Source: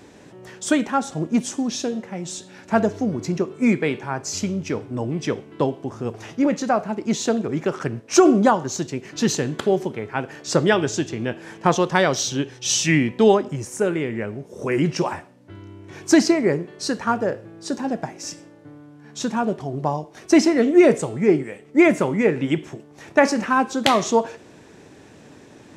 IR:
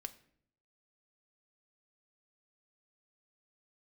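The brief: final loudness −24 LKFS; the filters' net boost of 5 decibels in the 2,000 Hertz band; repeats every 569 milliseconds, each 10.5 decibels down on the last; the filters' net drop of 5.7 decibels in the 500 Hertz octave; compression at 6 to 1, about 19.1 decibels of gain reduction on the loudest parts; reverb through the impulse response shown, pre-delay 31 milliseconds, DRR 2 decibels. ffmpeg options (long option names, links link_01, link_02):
-filter_complex "[0:a]equalizer=frequency=500:width_type=o:gain=-8.5,equalizer=frequency=2000:width_type=o:gain=6.5,acompressor=threshold=-34dB:ratio=6,aecho=1:1:569|1138|1707:0.299|0.0896|0.0269,asplit=2[link_01][link_02];[1:a]atrim=start_sample=2205,adelay=31[link_03];[link_02][link_03]afir=irnorm=-1:irlink=0,volume=1.5dB[link_04];[link_01][link_04]amix=inputs=2:normalize=0,volume=11dB"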